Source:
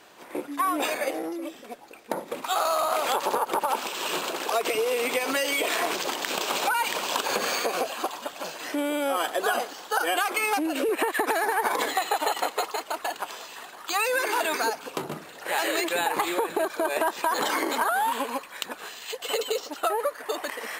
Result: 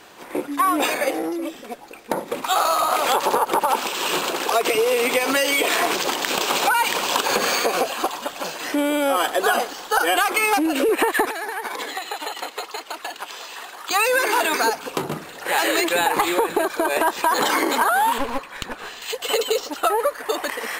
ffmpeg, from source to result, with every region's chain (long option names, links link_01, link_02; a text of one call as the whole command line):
ffmpeg -i in.wav -filter_complex "[0:a]asettb=1/sr,asplit=3[link_01][link_02][link_03];[link_01]atrim=end=11.254[link_04];[link_02]atrim=start=11.25:end=13.91,asetpts=PTS-STARTPTS,afade=type=in:duration=0.004:curve=qsin,afade=type=out:start_time=2.656:duration=0.004:curve=qsin,bass=frequency=250:gain=-13,treble=frequency=4000:gain=2,acrossover=split=320|1700|5400[link_05][link_06][link_07][link_08];[link_05]acompressor=threshold=-47dB:ratio=3[link_09];[link_06]acompressor=threshold=-41dB:ratio=3[link_10];[link_07]acompressor=threshold=-40dB:ratio=3[link_11];[link_08]acompressor=threshold=-52dB:ratio=3[link_12];[link_09][link_10][link_11][link_12]amix=inputs=4:normalize=0[link_13];[link_03]atrim=start=13.906[link_14];[link_04][link_13]acrossfade=duration=0.004:curve1=hsin:curve2=qsin[link_15];[link_15][link_14]acrossfade=duration=0.004:curve1=qsin:curve2=hsin,asettb=1/sr,asplit=3[link_16][link_17][link_18];[link_16]atrim=end=18.184[link_19];[link_17]atrim=start=18.18:end=19.02,asetpts=PTS-STARTPTS,afade=type=in:duration=0.004:curve=qsin,afade=type=out:start_time=0.836:duration=0.004:curve=qsin,lowpass=frequency=3800:poles=1,aeval=exprs='clip(val(0),-1,0.0158)':channel_layout=same[link_20];[link_18]atrim=start=19.016[link_21];[link_19][link_20]acrossfade=duration=0.004:curve1=hsin:curve2=qsin[link_22];[link_22][link_21]acrossfade=duration=0.004:curve1=qsin:curve2=hsin,bandreject=frequency=630:width=16,acontrast=63,lowshelf=frequency=72:gain=9" out.wav